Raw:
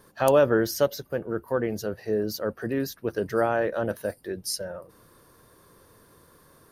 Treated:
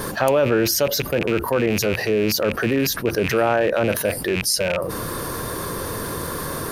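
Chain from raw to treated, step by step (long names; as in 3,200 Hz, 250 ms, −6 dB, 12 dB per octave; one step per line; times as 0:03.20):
loose part that buzzes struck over −43 dBFS, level −26 dBFS
envelope flattener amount 70%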